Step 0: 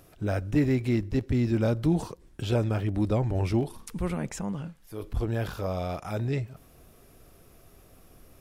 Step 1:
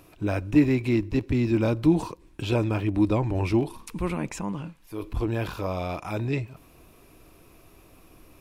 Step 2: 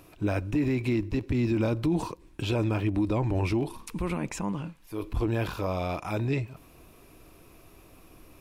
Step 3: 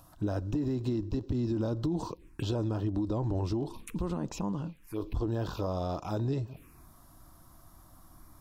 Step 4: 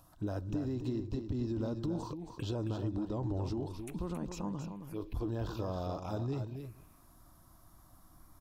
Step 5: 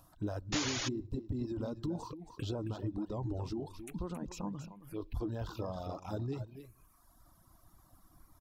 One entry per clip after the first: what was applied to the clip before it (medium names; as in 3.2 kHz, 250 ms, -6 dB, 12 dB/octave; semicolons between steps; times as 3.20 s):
graphic EQ with 31 bands 315 Hz +8 dB, 1 kHz +9 dB, 2.5 kHz +9 dB, 4 kHz +3 dB
peak limiter -18.5 dBFS, peak gain reduction 10 dB
compression, threshold -27 dBFS, peak gain reduction 5.5 dB; touch-sensitive phaser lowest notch 350 Hz, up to 2.3 kHz, full sweep at -30.5 dBFS
delay 272 ms -8 dB; trim -5 dB
painted sound noise, 0.52–0.89 s, 260–7100 Hz -35 dBFS; reverb removal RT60 1.2 s